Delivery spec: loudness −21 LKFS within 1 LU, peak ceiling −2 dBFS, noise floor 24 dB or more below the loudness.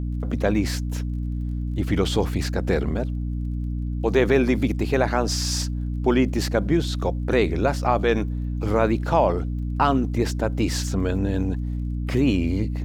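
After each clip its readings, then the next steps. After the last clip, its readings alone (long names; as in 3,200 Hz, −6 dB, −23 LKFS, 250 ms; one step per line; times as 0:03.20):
crackle rate 21 per second; mains hum 60 Hz; hum harmonics up to 300 Hz; level of the hum −24 dBFS; integrated loudness −23.5 LKFS; sample peak −5.5 dBFS; target loudness −21.0 LKFS
→ click removal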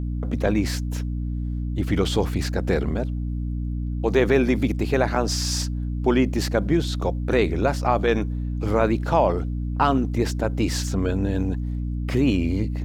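crackle rate 0.93 per second; mains hum 60 Hz; hum harmonics up to 300 Hz; level of the hum −24 dBFS
→ mains-hum notches 60/120/180/240/300 Hz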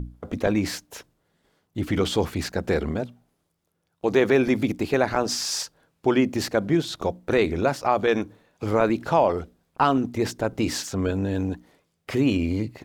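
mains hum none found; integrated loudness −24.5 LKFS; sample peak −6.5 dBFS; target loudness −21.0 LKFS
→ level +3.5 dB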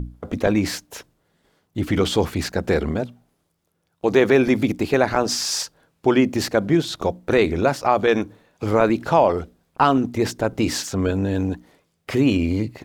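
integrated loudness −21.0 LKFS; sample peak −3.0 dBFS; background noise floor −70 dBFS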